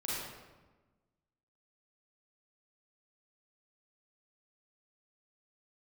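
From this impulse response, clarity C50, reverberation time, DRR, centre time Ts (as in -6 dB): -3.5 dB, 1.2 s, -7.5 dB, 104 ms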